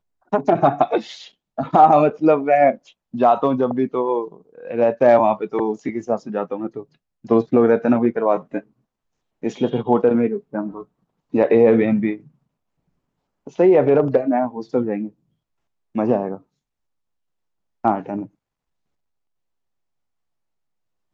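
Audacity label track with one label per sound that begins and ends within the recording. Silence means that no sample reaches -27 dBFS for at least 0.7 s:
9.440000	12.150000	sound
13.470000	15.070000	sound
15.960000	16.360000	sound
17.840000	18.230000	sound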